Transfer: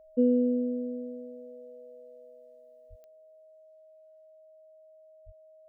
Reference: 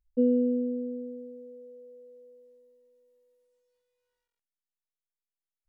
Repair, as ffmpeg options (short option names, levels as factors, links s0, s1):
-filter_complex "[0:a]adeclick=t=4,bandreject=f=630:w=30,asplit=3[s0][s1][s2];[s0]afade=t=out:st=2.89:d=0.02[s3];[s1]highpass=f=140:w=0.5412,highpass=f=140:w=1.3066,afade=t=in:st=2.89:d=0.02,afade=t=out:st=3.01:d=0.02[s4];[s2]afade=t=in:st=3.01:d=0.02[s5];[s3][s4][s5]amix=inputs=3:normalize=0,asplit=3[s6][s7][s8];[s6]afade=t=out:st=5.25:d=0.02[s9];[s7]highpass=f=140:w=0.5412,highpass=f=140:w=1.3066,afade=t=in:st=5.25:d=0.02,afade=t=out:st=5.37:d=0.02[s10];[s8]afade=t=in:st=5.37:d=0.02[s11];[s9][s10][s11]amix=inputs=3:normalize=0,asetnsamples=n=441:p=0,asendcmd='3.03 volume volume 9.5dB',volume=1"